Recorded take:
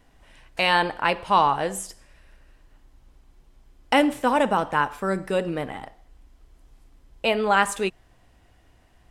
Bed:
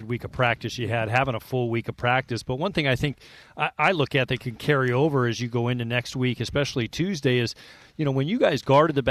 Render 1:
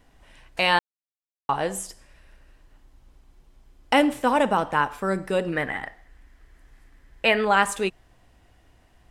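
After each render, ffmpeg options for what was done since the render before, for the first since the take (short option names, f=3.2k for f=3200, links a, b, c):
-filter_complex "[0:a]asettb=1/sr,asplit=3[a][b][c];[a]atrim=end=5.524[d];[b]atrim=start=5.52:end=7.45,asetpts=PTS-STARTPTS,afade=t=in:d=0.004:c=qsin,afade=t=out:st=1.926:d=0.004:c=qsin,equalizer=f=1.8k:w=2.4:g=14.5[e];[c]atrim=start=7.446[f];[d][e]acrossfade=d=0.004:c1=hsin:c2=qsin[g];[g][f]acrossfade=d=0.004:c1=qsin:c2=hsin,asplit=3[h][i][j];[h]atrim=end=0.79,asetpts=PTS-STARTPTS,afade=t=out:st=0.786:d=0.004:c=hsin[k];[i]atrim=start=0.79:end=1.49,asetpts=PTS-STARTPTS,volume=0[l];[j]atrim=start=1.49,asetpts=PTS-STARTPTS,afade=t=in:d=0.004:c=hsin[m];[k][l][m]concat=n=3:v=0:a=1"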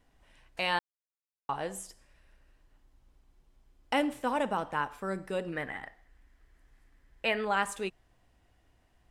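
-af "volume=-9.5dB"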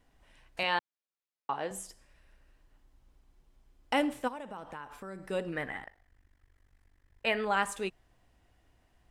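-filter_complex "[0:a]asettb=1/sr,asplit=3[a][b][c];[a]atrim=end=0.634[d];[b]atrim=start=0.63:end=1.71,asetpts=PTS-STARTPTS,afade=t=in:d=0.004:c=qsin,afade=t=out:st=1.076:d=0.004:c=qsin,highpass=190,lowpass=5k[e];[c]atrim=start=1.706[f];[d][e]acrossfade=d=0.004:c1=hsin:c2=qsin[g];[g][f]acrossfade=d=0.004:c1=qsin:c2=hsin,asplit=3[h][i][j];[h]afade=t=out:st=4.27:d=0.02[k];[i]acompressor=threshold=-41dB:ratio=4:attack=3.2:release=140:knee=1:detection=peak,afade=t=in:st=4.27:d=0.02,afade=t=out:st=5.29:d=0.02[l];[j]afade=t=in:st=5.29:d=0.02[m];[k][l][m]amix=inputs=3:normalize=0,asplit=3[n][o][p];[n]afade=t=out:st=5.82:d=0.02[q];[o]tremolo=f=48:d=1,afade=t=in:st=5.82:d=0.02,afade=t=out:st=7.25:d=0.02[r];[p]afade=t=in:st=7.25:d=0.02[s];[q][r][s]amix=inputs=3:normalize=0"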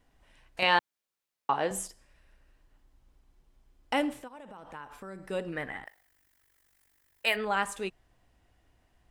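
-filter_complex "[0:a]asettb=1/sr,asplit=3[a][b][c];[a]atrim=end=0.624[d];[b]atrim=start=0.62:end=1.88,asetpts=PTS-STARTPTS,afade=t=in:d=0.004:c=qsin,afade=t=out:st=1.256:d=0.004:c=qsin,acontrast=59[e];[c]atrim=start=1.876[f];[d][e]acrossfade=d=0.004:c1=hsin:c2=qsin[g];[g][f]acrossfade=d=0.004:c1=qsin:c2=hsin,asettb=1/sr,asplit=3[h][i][j];[h]atrim=end=4.224[k];[i]atrim=start=4.22:end=4.74,asetpts=PTS-STARTPTS,afade=t=in:d=0.004:c=qsin,afade=t=out:st=0.516:d=0.004:c=qsin,acompressor=threshold=-44dB:ratio=3:attack=3.2:release=140:knee=1:detection=peak[l];[j]atrim=start=4.736[m];[k][l]acrossfade=d=0.004:c1=hsin:c2=qsin[n];[n][m]acrossfade=d=0.004:c1=qsin:c2=hsin,asplit=3[o][p][q];[o]afade=t=out:st=5.85:d=0.02[r];[p]aemphasis=mode=production:type=riaa,afade=t=in:st=5.85:d=0.02,afade=t=out:st=7.35:d=0.02[s];[q]afade=t=in:st=7.35:d=0.02[t];[r][s][t]amix=inputs=3:normalize=0"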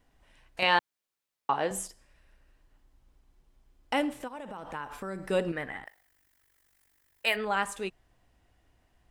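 -filter_complex "[0:a]asettb=1/sr,asplit=3[a][b][c];[a]atrim=end=4.204[d];[b]atrim=start=4.2:end=5.52,asetpts=PTS-STARTPTS,afade=t=in:d=0.004:c=qsin,afade=t=out:st=1.316:d=0.004:c=qsin,acontrast=53[e];[c]atrim=start=5.516[f];[d][e]acrossfade=d=0.004:c1=hsin:c2=qsin[g];[g][f]acrossfade=d=0.004:c1=qsin:c2=hsin"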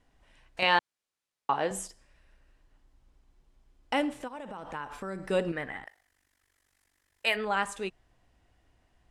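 -af "lowpass=10k"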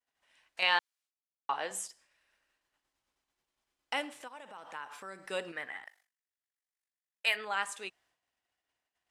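-af "agate=range=-33dB:threshold=-58dB:ratio=3:detection=peak,highpass=f=1.5k:p=1"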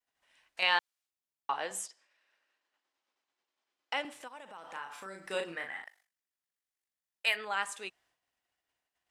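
-filter_complex "[0:a]asettb=1/sr,asplit=3[a][b][c];[a]atrim=end=1.864[d];[b]atrim=start=1.86:end=4.05,asetpts=PTS-STARTPTS,afade=t=in:d=0.004:c=qsin,afade=t=out:st=2.186:d=0.004:c=qsin,highpass=320,lowpass=5.9k[e];[c]atrim=start=4.046[f];[d][e]acrossfade=d=0.004:c1=hsin:c2=qsin[g];[g][f]acrossfade=d=0.004:c1=qsin:c2=hsin,asettb=1/sr,asplit=3[h][i][j];[h]atrim=end=4.604[k];[i]atrim=start=4.6:end=5.84,asetpts=PTS-STARTPTS,afade=t=in:d=0.004:c=qsin,afade=t=out:st=1.236:d=0.004:c=qsin,asplit=2[l][m];[m]adelay=36,volume=-5dB[n];[l][n]amix=inputs=2:normalize=0,atrim=end_sample=54684[o];[j]atrim=start=5.836[p];[k][o]acrossfade=d=0.004:c1=hsin:c2=qsin[q];[q][p]acrossfade=d=0.004:c1=qsin:c2=hsin"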